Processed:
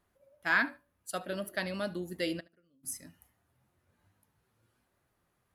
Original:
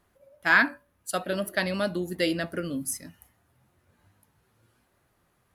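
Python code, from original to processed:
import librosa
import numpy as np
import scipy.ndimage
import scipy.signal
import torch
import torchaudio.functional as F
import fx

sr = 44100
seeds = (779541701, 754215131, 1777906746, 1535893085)

y = fx.gate_flip(x, sr, shuts_db=-31.0, range_db=-31, at=(2.39, 2.83), fade=0.02)
y = fx.echo_feedback(y, sr, ms=74, feedback_pct=18, wet_db=-22)
y = F.gain(torch.from_numpy(y), -7.5).numpy()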